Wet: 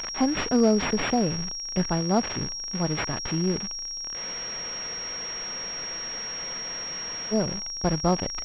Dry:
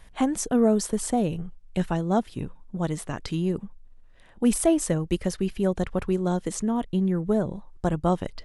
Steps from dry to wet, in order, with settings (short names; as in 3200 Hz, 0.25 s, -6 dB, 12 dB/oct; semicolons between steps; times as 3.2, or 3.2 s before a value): switching spikes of -21.5 dBFS; spectral freeze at 4.18, 3.14 s; pulse-width modulation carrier 5600 Hz